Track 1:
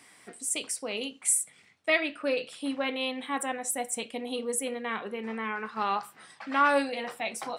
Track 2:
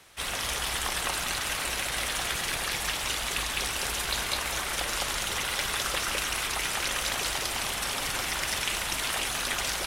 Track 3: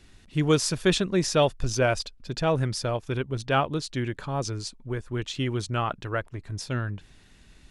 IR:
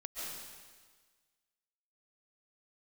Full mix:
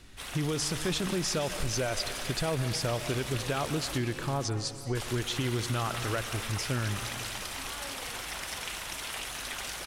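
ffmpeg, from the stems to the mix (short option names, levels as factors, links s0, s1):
-filter_complex "[0:a]alimiter=limit=0.0708:level=0:latency=1,adelay=1100,volume=0.158[s0];[1:a]volume=0.376,asplit=3[s1][s2][s3];[s1]atrim=end=3.98,asetpts=PTS-STARTPTS,afade=t=out:st=3.976:d=0.004:c=hsin[s4];[s2]atrim=start=3.98:end=4.95,asetpts=PTS-STARTPTS,volume=0[s5];[s3]atrim=start=4.95,asetpts=PTS-STARTPTS,afade=t=in:d=0.004:c=hsin[s6];[s4][s5][s6]concat=n=3:v=0:a=1,asplit=2[s7][s8];[s8]volume=0.473[s9];[2:a]alimiter=limit=0.0891:level=0:latency=1,volume=1,asplit=3[s10][s11][s12];[s11]volume=0.299[s13];[s12]volume=0.0891[s14];[3:a]atrim=start_sample=2205[s15];[s13][s15]afir=irnorm=-1:irlink=0[s16];[s9][s14]amix=inputs=2:normalize=0,aecho=0:1:464|928|1392|1856:1|0.23|0.0529|0.0122[s17];[s0][s7][s10][s16][s17]amix=inputs=5:normalize=0,acompressor=threshold=0.0501:ratio=6"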